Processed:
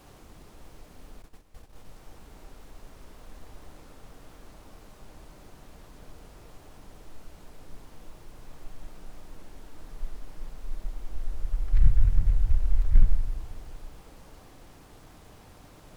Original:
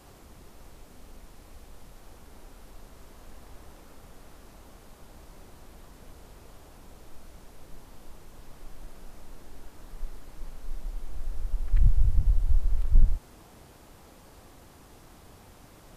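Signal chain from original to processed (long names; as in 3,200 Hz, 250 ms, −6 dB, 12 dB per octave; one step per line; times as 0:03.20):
rectangular room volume 1,300 cubic metres, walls mixed, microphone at 0.47 metres
0:01.22–0:01.87: noise gate −44 dBFS, range −12 dB
short delay modulated by noise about 1,600 Hz, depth 0.034 ms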